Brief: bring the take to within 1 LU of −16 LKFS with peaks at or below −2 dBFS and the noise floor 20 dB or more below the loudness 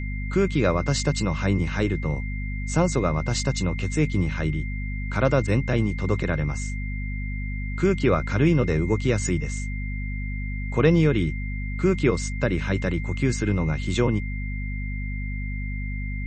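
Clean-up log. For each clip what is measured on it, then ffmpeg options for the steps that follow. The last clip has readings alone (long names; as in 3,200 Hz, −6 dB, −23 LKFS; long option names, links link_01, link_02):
mains hum 50 Hz; hum harmonics up to 250 Hz; level of the hum −27 dBFS; interfering tone 2,100 Hz; level of the tone −37 dBFS; integrated loudness −25.0 LKFS; sample peak −5.5 dBFS; target loudness −16.0 LKFS
→ -af "bandreject=frequency=50:width_type=h:width=4,bandreject=frequency=100:width_type=h:width=4,bandreject=frequency=150:width_type=h:width=4,bandreject=frequency=200:width_type=h:width=4,bandreject=frequency=250:width_type=h:width=4"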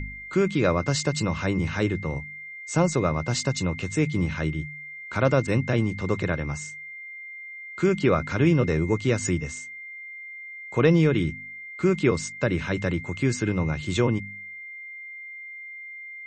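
mains hum none found; interfering tone 2,100 Hz; level of the tone −37 dBFS
→ -af "bandreject=frequency=2100:width=30"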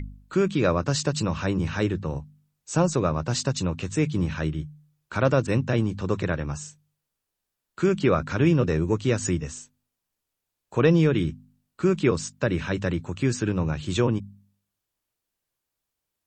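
interfering tone none found; integrated loudness −25.0 LKFS; sample peak −6.5 dBFS; target loudness −16.0 LKFS
→ -af "volume=9dB,alimiter=limit=-2dB:level=0:latency=1"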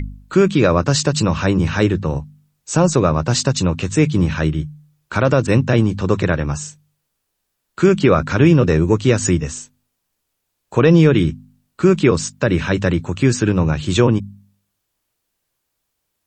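integrated loudness −16.5 LKFS; sample peak −2.0 dBFS; background noise floor −75 dBFS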